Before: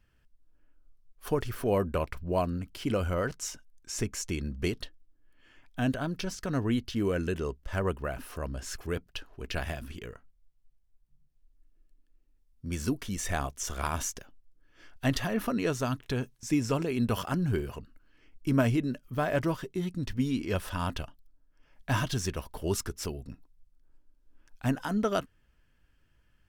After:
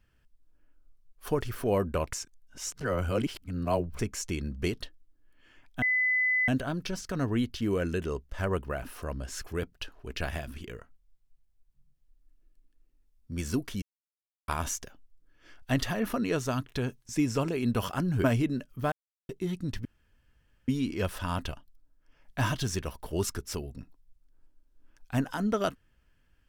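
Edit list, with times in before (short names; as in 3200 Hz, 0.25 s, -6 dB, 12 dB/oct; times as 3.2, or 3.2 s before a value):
2.13–3.99 reverse
5.82 add tone 2010 Hz -23 dBFS 0.66 s
13.16–13.82 mute
17.58–18.58 cut
19.26–19.63 mute
20.19 insert room tone 0.83 s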